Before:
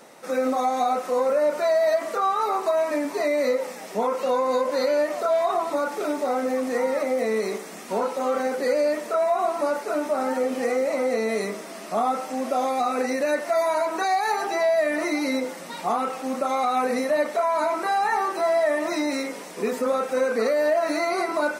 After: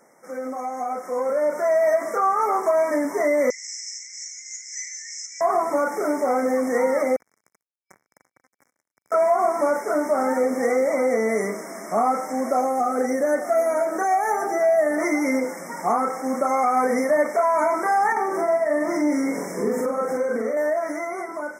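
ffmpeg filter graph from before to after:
ffmpeg -i in.wav -filter_complex "[0:a]asettb=1/sr,asplit=3[link_01][link_02][link_03];[link_01]atrim=end=3.504[link_04];[link_02]atrim=start=3.5:end=5.41,asetpts=PTS-STARTPTS,afade=type=in:duration=0.004:curve=qsin,afade=type=out:start_time=1.906:duration=0.004:curve=qsin,asuperpass=centerf=4000:order=20:qfactor=0.69,highshelf=frequency=3800:width_type=q:width=3:gain=8.5[link_05];[link_03]atrim=start=5.406[link_06];[link_04][link_05]acrossfade=duration=0.004:curve1=hsin:curve2=qsin[link_07];[link_07][link_06]acrossfade=duration=0.004:curve1=qsin:curve2=hsin,asettb=1/sr,asplit=3[link_08][link_09][link_10];[link_08]atrim=end=7.164[link_11];[link_09]atrim=start=7.16:end=9.12,asetpts=PTS-STARTPTS,afade=type=in:duration=0.004:curve=qsin,afade=type=out:start_time=1.956:duration=0.004:curve=qsin,acompressor=threshold=-31dB:ratio=16:attack=3.2:release=140:knee=1:detection=peak,acrusher=bits=3:mix=0:aa=0.5,highpass=120[link_12];[link_10]atrim=start=9.116[link_13];[link_11][link_12]acrossfade=duration=0.004:curve1=hsin:curve2=qsin[link_14];[link_14][link_13]acrossfade=duration=0.004:curve1=qsin:curve2=hsin,asettb=1/sr,asplit=3[link_15][link_16][link_17];[link_15]atrim=end=12.614[link_18];[link_16]atrim=start=12.61:end=15,asetpts=PTS-STARTPTS,afade=type=in:duration=0.004:curve=qsin,afade=type=out:start_time=2.386:duration=0.004:curve=qsin,equalizer=frequency=2900:width_type=o:width=1.2:gain=-11,bandreject=frequency=990:width=6,aecho=1:1:609:0.141,atrim=end_sample=105399[link_19];[link_17]atrim=start=14.996[link_20];[link_18][link_19]acrossfade=duration=0.004:curve1=hsin:curve2=qsin[link_21];[link_21][link_20]acrossfade=duration=0.004:curve1=qsin:curve2=hsin,asettb=1/sr,asplit=3[link_22][link_23][link_24];[link_22]atrim=end=18.124[link_25];[link_23]atrim=start=18.12:end=20.57,asetpts=PTS-STARTPTS,afade=type=in:duration=0.004:curve=qsin,afade=type=out:start_time=2.446:duration=0.004:curve=qsin,lowshelf=frequency=440:gain=8.5,acompressor=threshold=-27dB:ratio=3:attack=3.2:release=140:knee=1:detection=peak,asplit=2[link_26][link_27];[link_27]adelay=44,volume=-2dB[link_28];[link_26][link_28]amix=inputs=2:normalize=0,atrim=end_sample=108045[link_29];[link_24]atrim=start=20.566[link_30];[link_25][link_29]acrossfade=duration=0.004:curve1=hsin:curve2=qsin[link_31];[link_31][link_30]acrossfade=duration=0.004:curve1=qsin:curve2=hsin,afftfilt=real='re*(1-between(b*sr/4096,2300,5100))':imag='im*(1-between(b*sr/4096,2300,5100))':win_size=4096:overlap=0.75,dynaudnorm=framelen=260:gausssize=11:maxgain=12.5dB,volume=-7.5dB" out.wav

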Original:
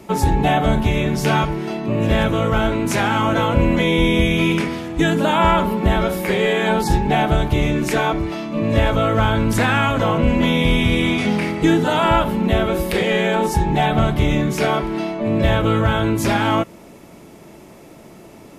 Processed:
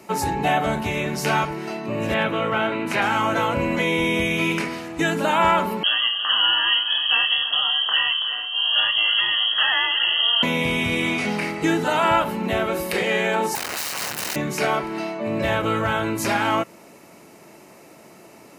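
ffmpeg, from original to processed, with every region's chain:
ffmpeg -i in.wav -filter_complex "[0:a]asettb=1/sr,asplit=3[link_01][link_02][link_03];[link_01]atrim=end=2.144[link_04];[link_02]atrim=start=2.14:end=3.02,asetpts=PTS-STARTPTS,afade=type=in:duration=0.004:curve=qsin,afade=type=out:start_time=0.876:duration=0.004:curve=qsin,highpass=frequency=120:width=0.5412,highpass=frequency=120:width=1.3066,highshelf=frequency=4400:width_type=q:width=1.5:gain=-10[link_05];[link_03]atrim=start=3.016[link_06];[link_04][link_05]acrossfade=duration=0.004:curve1=hsin:curve2=qsin[link_07];[link_07][link_06]acrossfade=duration=0.004:curve1=qsin:curve2=hsin,asettb=1/sr,asplit=3[link_08][link_09][link_10];[link_08]atrim=end=5.834[link_11];[link_09]atrim=start=5.83:end=10.43,asetpts=PTS-STARTPTS,afade=type=in:duration=0.004:curve=qsin,afade=type=out:start_time=4.596:duration=0.004:curve=qsin,lowpass=frequency=2900:width_type=q:width=0.5098,lowpass=frequency=2900:width_type=q:width=0.6013,lowpass=frequency=2900:width_type=q:width=0.9,lowpass=frequency=2900:width_type=q:width=2.563,afreqshift=-3400,asuperstop=centerf=2300:order=12:qfactor=3.6,aecho=1:1:330:0.237,atrim=end_sample=202860[link_12];[link_10]atrim=start=10.426[link_13];[link_11][link_12]acrossfade=duration=0.004:curve1=hsin:curve2=qsin[link_14];[link_14][link_13]acrossfade=duration=0.004:curve1=qsin:curve2=hsin,asettb=1/sr,asplit=3[link_15][link_16][link_17];[link_15]atrim=end=13.554[link_18];[link_16]atrim=start=13.55:end=14.36,asetpts=PTS-STARTPTS,afade=type=in:duration=0.004:curve=qsin,afade=type=out:start_time=0.806:duration=0.004:curve=qsin,aemphasis=mode=production:type=50fm,acrusher=bits=3:dc=4:mix=0:aa=0.000001,aeval=exprs='(mod(8.91*val(0)+1,2)-1)/8.91':channel_layout=same[link_19];[link_17]atrim=start=14.356[link_20];[link_18][link_19]acrossfade=duration=0.004:curve1=hsin:curve2=qsin[link_21];[link_21][link_20]acrossfade=duration=0.004:curve1=qsin:curve2=hsin,highpass=100,lowshelf=frequency=450:gain=-9,bandreject=frequency=3400:width=7.4" out.wav

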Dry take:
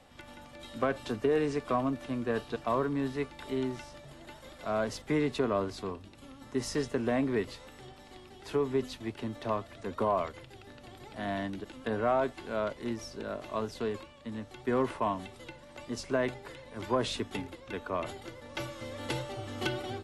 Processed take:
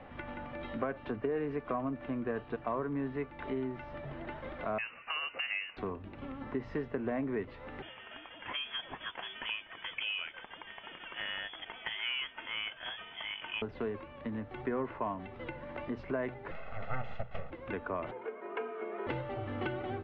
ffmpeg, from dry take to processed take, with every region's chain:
ffmpeg -i in.wav -filter_complex "[0:a]asettb=1/sr,asplit=3[link_01][link_02][link_03];[link_01]atrim=end=4.784[link_04];[link_02]atrim=start=4.78:end=5.77,asetpts=PTS-STARTPTS,afade=type=in:duration=0.004:curve=qsin,afade=type=out:start_time=0.986:duration=0.004:curve=qsin,highpass=frequency=320:width=0.5412,highpass=frequency=320:width=1.3066,lowpass=frequency=2700:width_type=q:width=0.5098,lowpass=frequency=2700:width_type=q:width=0.6013,lowpass=frequency=2700:width_type=q:width=0.9,lowpass=frequency=2700:width_type=q:width=2.563,afreqshift=-3200[link_05];[link_03]atrim=start=5.766[link_06];[link_04][link_05]acrossfade=duration=0.004:curve1=hsin:curve2=qsin[link_07];[link_07][link_06]acrossfade=duration=0.004:curve1=qsin:curve2=hsin,asettb=1/sr,asplit=3[link_08][link_09][link_10];[link_08]atrim=end=7.824[link_11];[link_09]atrim=start=7.82:end=13.62,asetpts=PTS-STARTPTS,afade=type=in:duration=0.004:curve=qsin,afade=type=out:start_time=5.796:duration=0.004:curve=qsin,aemphasis=mode=production:type=bsi,lowpass=frequency=3100:width_type=q:width=0.5098,lowpass=frequency=3100:width_type=q:width=0.6013,lowpass=frequency=3100:width_type=q:width=0.9,lowpass=frequency=3100:width_type=q:width=2.563,afreqshift=-3600[link_12];[link_10]atrim=start=13.616[link_13];[link_11][link_12]acrossfade=duration=0.004:curve1=hsin:curve2=qsin[link_14];[link_14][link_13]acrossfade=duration=0.004:curve1=qsin:curve2=hsin,asettb=1/sr,asplit=3[link_15][link_16][link_17];[link_15]atrim=end=16.514[link_18];[link_16]atrim=start=16.51:end=17.51,asetpts=PTS-STARTPTS,afade=type=in:duration=0.004:curve=qsin,afade=type=out:start_time=0.996:duration=0.004:curve=qsin,aeval=exprs='abs(val(0))':channel_layout=same,aecho=1:1:1.5:0.92,atrim=end_sample=44100[link_19];[link_17]atrim=start=17.506[link_20];[link_18][link_19]acrossfade=duration=0.004:curve1=hsin:curve2=qsin[link_21];[link_21][link_20]acrossfade=duration=0.004:curve1=qsin:curve2=hsin,asettb=1/sr,asplit=3[link_22][link_23][link_24];[link_22]atrim=end=18.114[link_25];[link_23]atrim=start=18.11:end=19.07,asetpts=PTS-STARTPTS,afade=type=in:duration=0.004:curve=qsin,afade=type=out:start_time=0.956:duration=0.004:curve=qsin,highpass=220,equalizer=frequency=310:width_type=q:width=4:gain=9,equalizer=frequency=520:width_type=q:width=4:gain=-10,equalizer=frequency=1800:width_type=q:width=4:gain=-7,lowpass=frequency=2400:width=0.5412,lowpass=frequency=2400:width=1.3066,afreqshift=110[link_26];[link_24]atrim=start=19.066[link_27];[link_25][link_26]acrossfade=duration=0.004:curve1=hsin:curve2=qsin[link_28];[link_28][link_27]acrossfade=duration=0.004:curve1=qsin:curve2=hsin,lowpass=frequency=2400:width=0.5412,lowpass=frequency=2400:width=1.3066,bandreject=frequency=60:width_type=h:width=6,bandreject=frequency=120:width_type=h:width=6,acompressor=threshold=-47dB:ratio=2.5,volume=8.5dB" out.wav

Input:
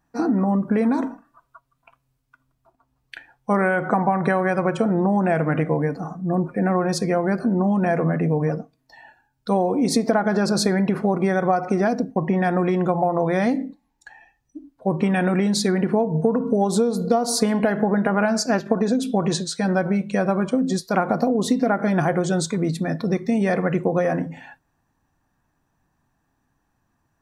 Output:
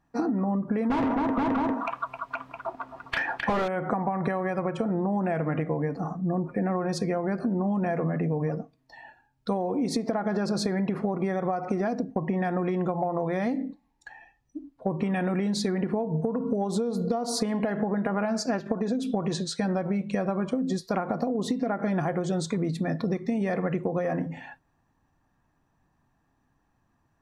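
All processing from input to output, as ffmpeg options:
ffmpeg -i in.wav -filter_complex "[0:a]asettb=1/sr,asplit=3[link_01][link_02][link_03];[link_01]atrim=end=0.904[link_04];[link_02]atrim=start=0.9:end=3.68,asetpts=PTS-STARTPTS,afade=type=in:duration=0.004:curve=qsin,afade=type=out:start_time=2.776:duration=0.004:curve=qsin,aecho=1:1:262|476|663:0.237|0.376|0.211,atrim=end_sample=122598,asplit=2[link_05][link_06];[link_06]highpass=frequency=720:poles=1,volume=37dB,asoftclip=type=tanh:threshold=-8dB[link_07];[link_05][link_07]amix=inputs=2:normalize=0,lowpass=frequency=1200:poles=1,volume=-6dB[link_08];[link_03]atrim=start=3.676[link_09];[link_04][link_08]acrossfade=duration=0.004:curve1=hsin:curve2=qsin[link_10];[link_10][link_09]acrossfade=duration=0.004:curve1=qsin:curve2=hsin,lowpass=frequency=4000:poles=1,bandreject=frequency=1500:width=16,acompressor=threshold=-24dB:ratio=6" out.wav

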